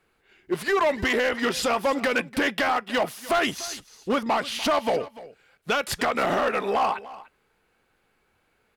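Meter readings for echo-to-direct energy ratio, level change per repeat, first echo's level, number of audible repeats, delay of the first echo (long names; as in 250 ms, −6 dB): −18.0 dB, repeats not evenly spaced, −18.0 dB, 1, 294 ms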